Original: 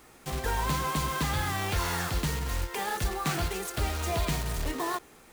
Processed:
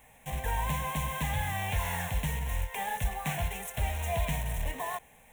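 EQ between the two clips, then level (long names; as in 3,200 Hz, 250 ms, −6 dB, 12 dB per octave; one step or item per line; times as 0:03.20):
phaser with its sweep stopped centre 1,300 Hz, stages 6
0.0 dB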